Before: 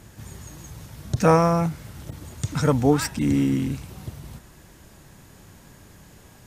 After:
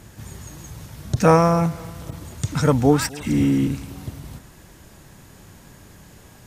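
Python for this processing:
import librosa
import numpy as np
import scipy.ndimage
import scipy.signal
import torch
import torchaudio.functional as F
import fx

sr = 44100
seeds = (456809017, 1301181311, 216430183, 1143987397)

p1 = fx.dispersion(x, sr, late='lows', ms=96.0, hz=1500.0, at=(3.09, 3.67))
p2 = p1 + fx.echo_feedback(p1, sr, ms=255, feedback_pct=47, wet_db=-22, dry=0)
y = p2 * librosa.db_to_amplitude(2.5)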